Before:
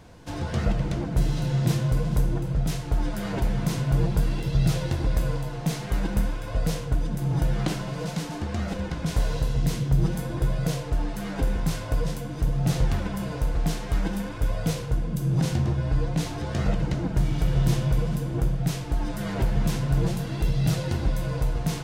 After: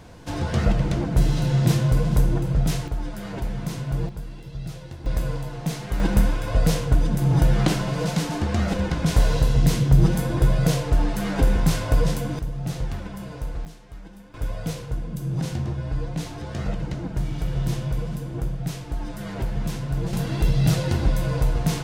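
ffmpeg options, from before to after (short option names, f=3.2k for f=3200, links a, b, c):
-af "asetnsamples=n=441:p=0,asendcmd='2.88 volume volume -3.5dB;4.09 volume volume -11.5dB;5.06 volume volume -0.5dB;6 volume volume 6dB;12.39 volume volume -5dB;13.65 volume volume -16dB;14.34 volume volume -3dB;20.13 volume volume 4dB',volume=4dB"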